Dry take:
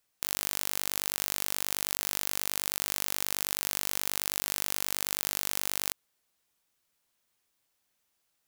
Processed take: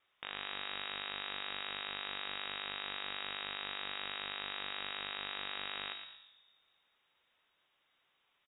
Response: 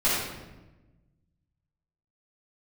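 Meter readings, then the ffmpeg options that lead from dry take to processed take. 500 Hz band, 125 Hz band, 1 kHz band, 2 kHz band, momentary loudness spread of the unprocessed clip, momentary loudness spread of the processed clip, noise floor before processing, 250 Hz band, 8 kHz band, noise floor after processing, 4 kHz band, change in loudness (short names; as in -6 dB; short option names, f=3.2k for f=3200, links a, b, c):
-6.5 dB, -12.5 dB, -2.5 dB, -2.0 dB, 0 LU, 2 LU, -78 dBFS, -9.0 dB, under -40 dB, -78 dBFS, -3.0 dB, -10.0 dB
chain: -filter_complex "[0:a]alimiter=limit=-13.5dB:level=0:latency=1,asplit=2[a][b];[b]adelay=115,lowpass=f=1.7k:p=1,volume=-5.5dB,asplit=2[c][d];[d]adelay=115,lowpass=f=1.7k:p=1,volume=0.38,asplit=2[e][f];[f]adelay=115,lowpass=f=1.7k:p=1,volume=0.38,asplit=2[g][h];[h]adelay=115,lowpass=f=1.7k:p=1,volume=0.38,asplit=2[i][j];[j]adelay=115,lowpass=f=1.7k:p=1,volume=0.38[k];[a][c][e][g][i][k]amix=inputs=6:normalize=0,asplit=2[l][m];[1:a]atrim=start_sample=2205[n];[m][n]afir=irnorm=-1:irlink=0,volume=-20.5dB[o];[l][o]amix=inputs=2:normalize=0,lowpass=f=3.2k:t=q:w=0.5098,lowpass=f=3.2k:t=q:w=0.6013,lowpass=f=3.2k:t=q:w=0.9,lowpass=f=3.2k:t=q:w=2.563,afreqshift=-3800,volume=6dB"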